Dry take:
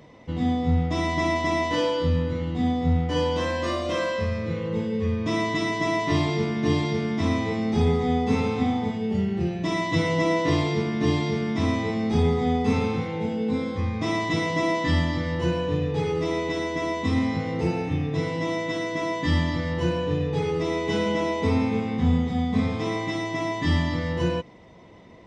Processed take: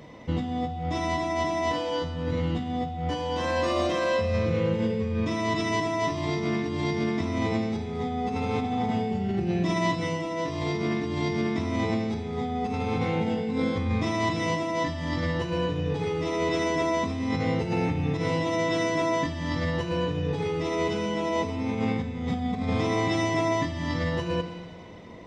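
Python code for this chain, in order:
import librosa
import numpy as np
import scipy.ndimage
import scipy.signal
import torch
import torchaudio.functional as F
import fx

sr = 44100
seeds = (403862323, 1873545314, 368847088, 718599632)

y = fx.over_compress(x, sr, threshold_db=-28.0, ratio=-1.0)
y = fx.rev_schroeder(y, sr, rt60_s=2.0, comb_ms=31, drr_db=8.0)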